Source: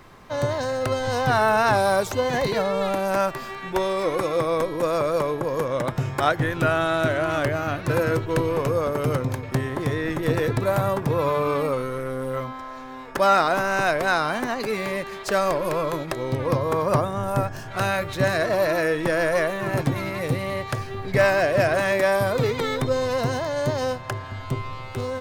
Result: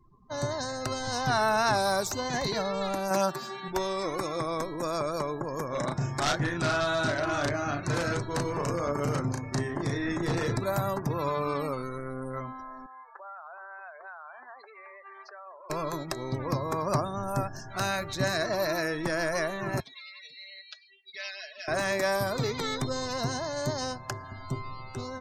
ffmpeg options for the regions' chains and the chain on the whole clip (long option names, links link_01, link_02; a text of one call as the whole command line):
ffmpeg -i in.wav -filter_complex "[0:a]asettb=1/sr,asplit=3[link_01][link_02][link_03];[link_01]atrim=end=3.104[link_04];[link_02]atrim=start=3.1:end=3.68,asetpts=PTS-STARTPTS,afade=type=in:duration=0.004:curve=qsin,afade=type=out:start_time=0.576:duration=0.004:curve=qsin,highpass=98,aecho=1:1:5.4:0.78,atrim=end_sample=25578[link_05];[link_03]atrim=start=3.676[link_06];[link_04][link_05]acrossfade=duration=0.004:curve1=hsin:curve2=qsin[link_07];[link_07][link_06]acrossfade=duration=0.004:curve1=qsin:curve2=hsin,asettb=1/sr,asplit=3[link_08][link_09][link_10];[link_08]atrim=end=5.694[link_11];[link_09]atrim=start=5.69:end=10.57,asetpts=PTS-STARTPTS,afade=type=in:duration=0.004:curve=qsin,afade=type=out:start_time=4.876:duration=0.004:curve=qsin,lowpass=frequency=11000:width=0.5412,lowpass=frequency=11000:width=1.3066,asplit=2[link_12][link_13];[link_13]adelay=35,volume=-3dB[link_14];[link_12][link_14]amix=inputs=2:normalize=0,atrim=end_sample=215208,aeval=exprs='0.188*(abs(mod(val(0)/0.188+3,4)-2)-1)':channel_layout=same[link_15];[link_10]atrim=start=10.566[link_16];[link_11][link_15]acrossfade=duration=0.004:curve1=hsin:curve2=qsin[link_17];[link_17][link_16]acrossfade=duration=0.004:curve1=qsin:curve2=hsin,asettb=1/sr,asplit=3[link_18][link_19][link_20];[link_18]atrim=end=12.864[link_21];[link_19]atrim=start=12.86:end=15.7,asetpts=PTS-STARTPTS,afade=type=in:duration=0.004:curve=qsin,afade=type=out:start_time=2.836:duration=0.004:curve=qsin,acompressor=threshold=-31dB:ratio=10:attack=3.2:release=140:knee=1:detection=peak,highpass=740,lowpass=2500[link_22];[link_20]atrim=start=15.696[link_23];[link_21][link_22]acrossfade=duration=0.004:curve1=hsin:curve2=qsin[link_24];[link_24][link_23]acrossfade=duration=0.004:curve1=qsin:curve2=hsin,asettb=1/sr,asplit=3[link_25][link_26][link_27];[link_25]atrim=end=19.804[link_28];[link_26]atrim=start=19.8:end=21.68,asetpts=PTS-STARTPTS,afade=type=in:duration=0.004:curve=qsin,afade=type=out:start_time=1.876:duration=0.004:curve=qsin,bandpass=frequency=3400:width_type=q:width=2.9,aecho=1:1:4.7:0.72,atrim=end_sample=82908[link_29];[link_27]atrim=start=21.676[link_30];[link_28][link_29]acrossfade=duration=0.004:curve1=hsin:curve2=qsin[link_31];[link_31][link_30]acrossfade=duration=0.004:curve1=qsin:curve2=hsin,highshelf=frequency=4300:width_type=q:width=1.5:gain=7,afftdn=noise_reduction=35:noise_floor=-40,equalizer=frequency=100:width_type=o:width=0.33:gain=-6,equalizer=frequency=500:width_type=o:width=0.33:gain=-8,equalizer=frequency=4000:width_type=o:width=0.33:gain=5,equalizer=frequency=10000:width_type=o:width=0.33:gain=-8,volume=-5dB" out.wav